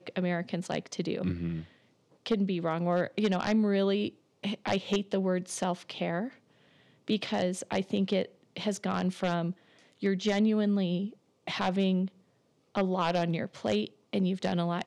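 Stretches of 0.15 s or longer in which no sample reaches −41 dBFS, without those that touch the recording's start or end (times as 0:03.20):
0:01.64–0:02.26
0:04.09–0:04.43
0:06.29–0:07.08
0:08.26–0:08.56
0:09.52–0:10.02
0:11.10–0:11.47
0:12.08–0:12.75
0:13.87–0:14.13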